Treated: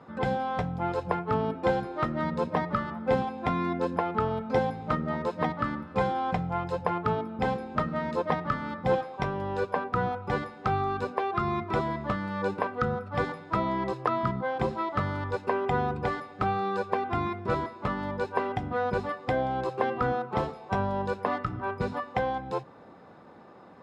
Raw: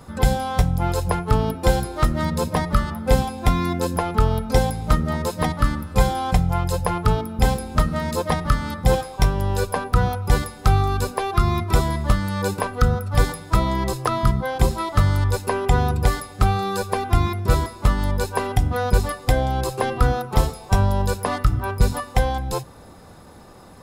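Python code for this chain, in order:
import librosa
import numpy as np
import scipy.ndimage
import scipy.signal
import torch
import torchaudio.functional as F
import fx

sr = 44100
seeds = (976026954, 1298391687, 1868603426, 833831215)

y = fx.bandpass_edges(x, sr, low_hz=190.0, high_hz=2300.0)
y = F.gain(torch.from_numpy(y), -4.0).numpy()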